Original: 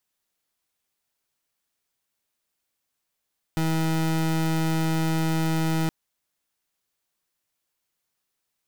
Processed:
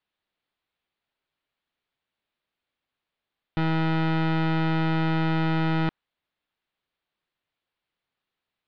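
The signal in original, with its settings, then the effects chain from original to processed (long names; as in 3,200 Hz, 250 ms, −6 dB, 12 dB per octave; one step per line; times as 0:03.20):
pulse wave 161 Hz, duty 29% −23.5 dBFS 2.32 s
Butterworth low-pass 4,000 Hz 36 dB per octave
dynamic equaliser 1,400 Hz, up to +4 dB, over −42 dBFS, Q 1.2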